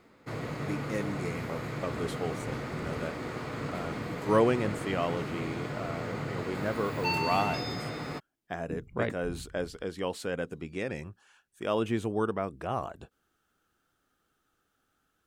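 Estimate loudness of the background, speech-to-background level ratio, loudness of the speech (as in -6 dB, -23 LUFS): -35.5 LUFS, 1.5 dB, -34.0 LUFS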